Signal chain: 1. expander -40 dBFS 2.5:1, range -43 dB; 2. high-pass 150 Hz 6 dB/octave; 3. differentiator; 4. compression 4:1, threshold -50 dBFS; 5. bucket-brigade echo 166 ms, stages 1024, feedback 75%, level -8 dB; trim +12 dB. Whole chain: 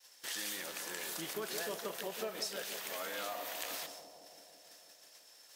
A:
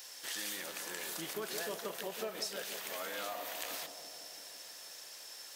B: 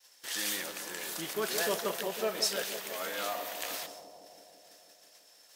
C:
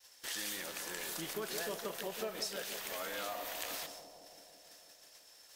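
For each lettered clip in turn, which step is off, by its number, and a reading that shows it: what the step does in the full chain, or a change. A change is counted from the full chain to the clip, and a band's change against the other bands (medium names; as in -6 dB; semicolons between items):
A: 1, momentary loudness spread change -9 LU; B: 4, mean gain reduction 3.0 dB; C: 2, 125 Hz band +2.5 dB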